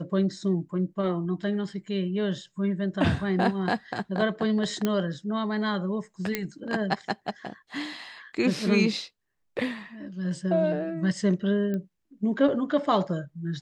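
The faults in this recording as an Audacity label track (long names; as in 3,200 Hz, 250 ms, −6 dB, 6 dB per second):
4.850000	4.850000	click −12 dBFS
6.350000	6.350000	click −11 dBFS
11.740000	11.740000	click −21 dBFS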